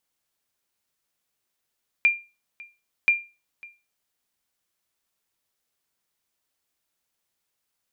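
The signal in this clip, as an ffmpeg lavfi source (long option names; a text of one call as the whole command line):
ffmpeg -f lavfi -i "aevalsrc='0.282*(sin(2*PI*2390*mod(t,1.03))*exp(-6.91*mod(t,1.03)/0.29)+0.0631*sin(2*PI*2390*max(mod(t,1.03)-0.55,0))*exp(-6.91*max(mod(t,1.03)-0.55,0)/0.29))':duration=2.06:sample_rate=44100" out.wav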